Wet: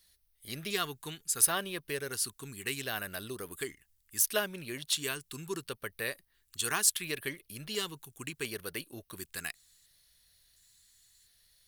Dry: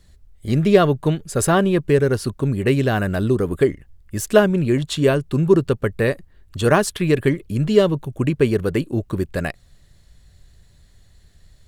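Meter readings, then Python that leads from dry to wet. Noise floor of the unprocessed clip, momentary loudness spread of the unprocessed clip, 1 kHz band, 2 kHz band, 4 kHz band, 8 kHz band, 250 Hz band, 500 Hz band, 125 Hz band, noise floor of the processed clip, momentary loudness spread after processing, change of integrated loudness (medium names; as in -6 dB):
-52 dBFS, 9 LU, -15.5 dB, -10.0 dB, -4.5 dB, +1.0 dB, -25.0 dB, -22.5 dB, -27.0 dB, -73 dBFS, 16 LU, -14.5 dB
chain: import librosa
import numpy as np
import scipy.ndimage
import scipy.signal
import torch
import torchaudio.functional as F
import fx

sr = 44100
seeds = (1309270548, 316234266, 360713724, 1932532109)

y = fx.filter_lfo_notch(x, sr, shape='square', hz=0.71, low_hz=580.0, high_hz=7400.0, q=2.0)
y = librosa.effects.preemphasis(y, coef=0.97, zi=[0.0])
y = y * 10.0 ** (2.0 / 20.0)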